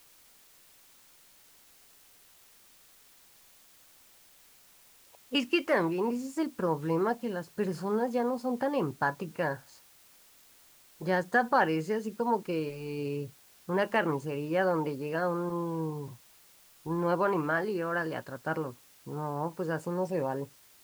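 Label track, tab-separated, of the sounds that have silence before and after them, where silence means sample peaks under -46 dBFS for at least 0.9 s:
5.150000	9.750000	sound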